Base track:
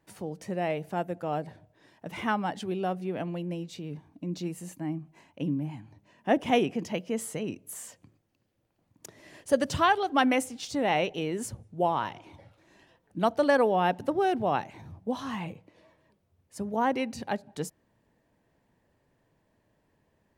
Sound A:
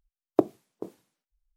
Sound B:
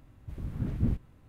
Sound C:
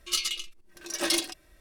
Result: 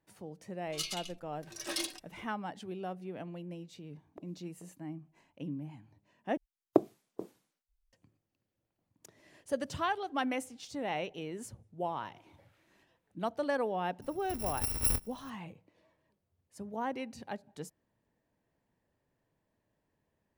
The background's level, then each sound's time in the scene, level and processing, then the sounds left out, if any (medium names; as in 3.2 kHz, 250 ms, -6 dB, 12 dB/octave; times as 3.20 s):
base track -9.5 dB
0.66 s: add C -9.5 dB
3.79 s: add A -17.5 dB + compression 3:1, threshold -31 dBFS
6.37 s: replace with A -3.5 dB
11.87 s: add B -13.5 dB + Chebyshev high-pass 2 kHz
14.02 s: add B -2.5 dB + bit-reversed sample order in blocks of 256 samples